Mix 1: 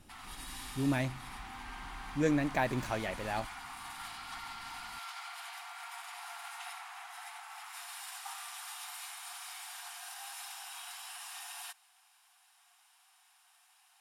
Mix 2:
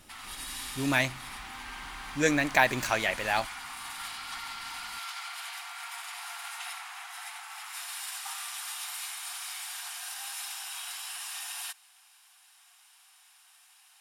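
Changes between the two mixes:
speech +6.5 dB; master: add tilt shelf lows -8 dB, about 720 Hz

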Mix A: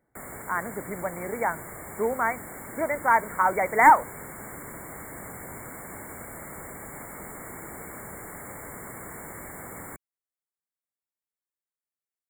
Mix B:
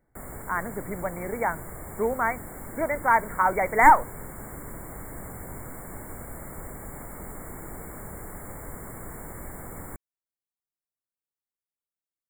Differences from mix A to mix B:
background: add bell 3400 Hz -9.5 dB 1.8 oct; master: remove HPF 150 Hz 6 dB/oct

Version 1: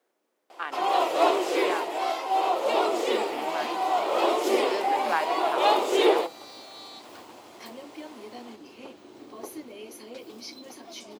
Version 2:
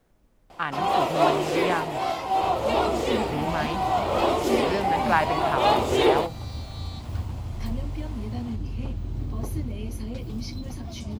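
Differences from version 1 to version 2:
speech +4.5 dB; master: remove Chebyshev high-pass 350 Hz, order 3

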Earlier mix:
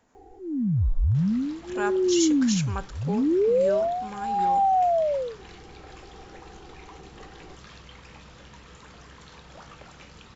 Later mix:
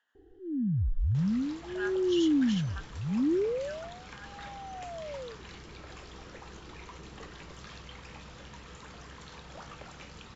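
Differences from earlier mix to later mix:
speech: add double band-pass 2300 Hz, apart 0.82 oct; first sound: add ladder low-pass 460 Hz, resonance 25%

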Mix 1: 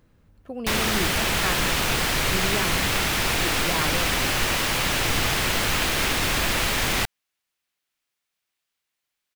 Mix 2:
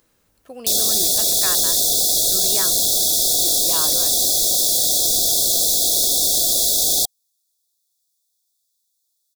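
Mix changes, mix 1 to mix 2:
background: add brick-wall FIR band-stop 780–3300 Hz; master: add tone controls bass -13 dB, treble +14 dB

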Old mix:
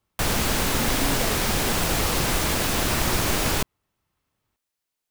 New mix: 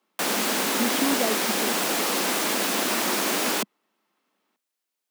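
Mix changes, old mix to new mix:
speech +6.0 dB; master: add steep high-pass 200 Hz 48 dB/oct

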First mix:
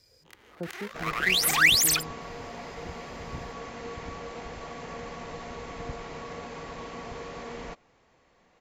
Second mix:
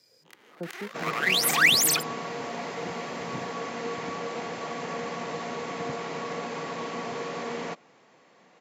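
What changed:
second sound +6.0 dB; master: add HPF 150 Hz 24 dB/oct

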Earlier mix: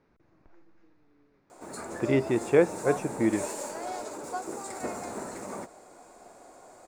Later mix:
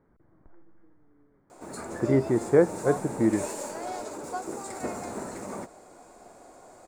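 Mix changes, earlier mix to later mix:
speech: add polynomial smoothing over 41 samples; master: add low shelf 260 Hz +5 dB

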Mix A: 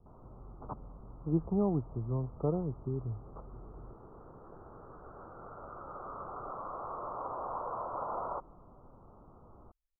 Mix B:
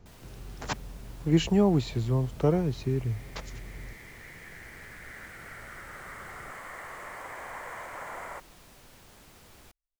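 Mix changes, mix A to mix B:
speech +7.5 dB; second sound -4.5 dB; master: remove steep low-pass 1300 Hz 96 dB/oct

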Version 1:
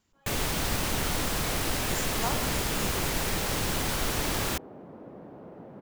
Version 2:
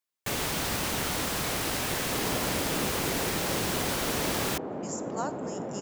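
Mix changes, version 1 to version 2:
speech: entry +2.95 s; second sound +11.0 dB; master: add HPF 120 Hz 6 dB/oct

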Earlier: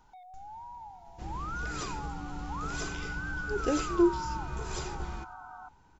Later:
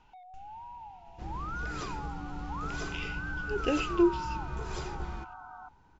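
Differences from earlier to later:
speech: add bell 2700 Hz +14.5 dB 0.48 oct; master: add air absorption 95 m

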